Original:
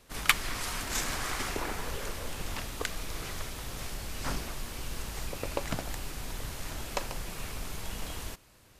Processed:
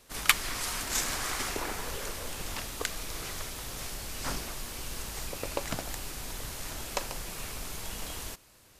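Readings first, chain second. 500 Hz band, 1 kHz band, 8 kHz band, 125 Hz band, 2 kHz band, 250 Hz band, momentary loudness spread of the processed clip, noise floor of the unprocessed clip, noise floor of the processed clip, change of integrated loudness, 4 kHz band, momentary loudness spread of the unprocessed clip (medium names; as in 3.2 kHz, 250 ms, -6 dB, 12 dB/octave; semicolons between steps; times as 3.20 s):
0.0 dB, 0.0 dB, +3.5 dB, -3.0 dB, +0.5 dB, -1.5 dB, 9 LU, -59 dBFS, -59 dBFS, +1.5 dB, +1.5 dB, 8 LU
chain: tone controls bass -3 dB, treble +4 dB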